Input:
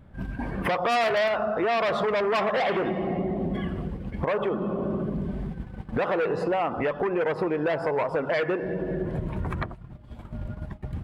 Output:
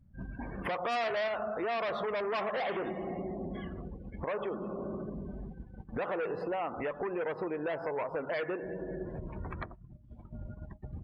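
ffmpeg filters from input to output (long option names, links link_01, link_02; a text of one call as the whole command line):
ffmpeg -i in.wav -af "afftdn=noise_reduction=18:noise_floor=-45,adynamicequalizer=threshold=0.00891:dfrequency=140:dqfactor=1.2:tfrequency=140:tqfactor=1.2:attack=5:release=100:ratio=0.375:range=2.5:mode=cutabove:tftype=bell,volume=-8.5dB" out.wav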